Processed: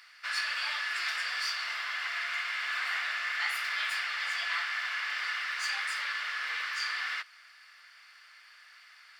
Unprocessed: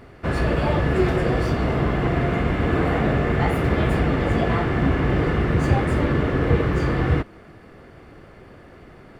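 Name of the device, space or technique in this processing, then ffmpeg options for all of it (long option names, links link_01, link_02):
headphones lying on a table: -af "highpass=frequency=1500:width=0.5412,highpass=frequency=1500:width=1.3066,equalizer=frequency=4900:width_type=o:width=0.58:gain=11"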